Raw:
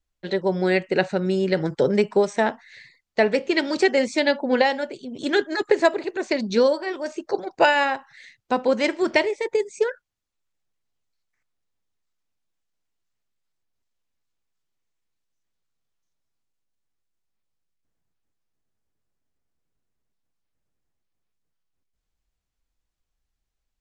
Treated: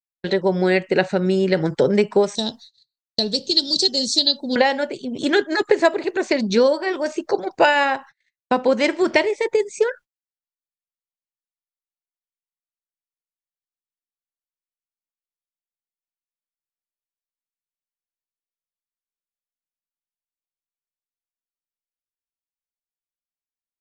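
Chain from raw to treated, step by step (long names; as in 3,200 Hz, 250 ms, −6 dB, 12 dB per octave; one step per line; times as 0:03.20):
noise gate −41 dBFS, range −43 dB
0:02.35–0:04.56: drawn EQ curve 140 Hz 0 dB, 2,200 Hz −27 dB, 4,000 Hz +14 dB, 6,900 Hz +5 dB
in parallel at +3 dB: downward compressor, threshold −25 dBFS, peak gain reduction 13 dB
on the sum: level −1 dB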